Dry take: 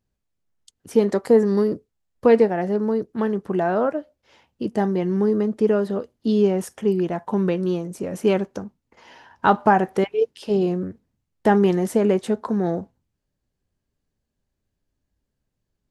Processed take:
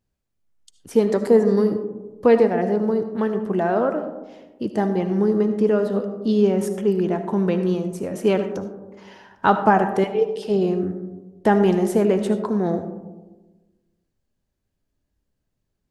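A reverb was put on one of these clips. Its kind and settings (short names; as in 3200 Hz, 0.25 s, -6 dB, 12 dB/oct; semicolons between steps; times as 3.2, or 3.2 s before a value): digital reverb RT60 1.2 s, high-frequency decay 0.25×, pre-delay 35 ms, DRR 8.5 dB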